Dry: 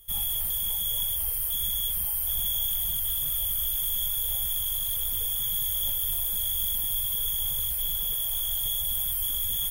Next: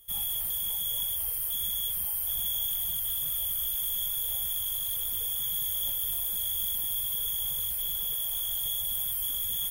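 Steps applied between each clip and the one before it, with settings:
low-shelf EQ 70 Hz −10.5 dB
level −2.5 dB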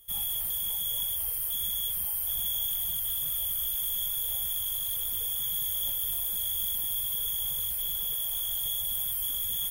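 no processing that can be heard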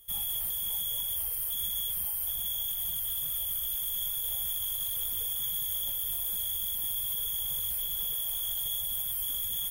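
brickwall limiter −22.5 dBFS, peak gain reduction 5.5 dB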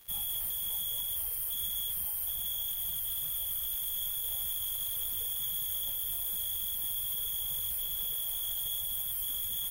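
surface crackle 210 per second −42 dBFS
level −2 dB

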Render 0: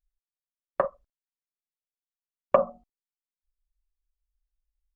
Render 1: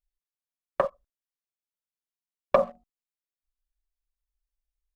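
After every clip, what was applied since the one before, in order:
leveller curve on the samples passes 1
level −2.5 dB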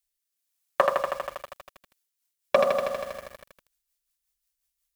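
spectral tilt +3.5 dB per octave
rotating-speaker cabinet horn 1.2 Hz, later 5.5 Hz, at 0:01.56
feedback echo at a low word length 80 ms, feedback 80%, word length 9 bits, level −3.5 dB
level +7 dB

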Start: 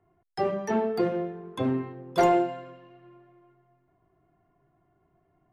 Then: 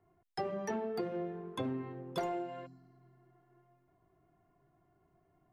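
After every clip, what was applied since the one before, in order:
downward compressor 12 to 1, threshold −30 dBFS, peak gain reduction 13.5 dB
healed spectral selection 0:02.69–0:03.57, 330–4,000 Hz after
level −3 dB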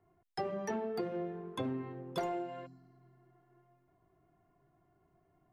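no processing that can be heard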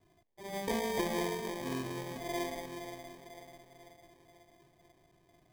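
volume swells 237 ms
echo with a time of its own for lows and highs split 370 Hz, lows 358 ms, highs 492 ms, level −7.5 dB
decimation without filtering 32×
level +3 dB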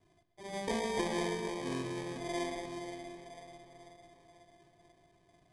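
Chebyshev low-pass filter 10,000 Hz, order 4
bucket-brigade delay 129 ms, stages 4,096, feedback 71%, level −13 dB

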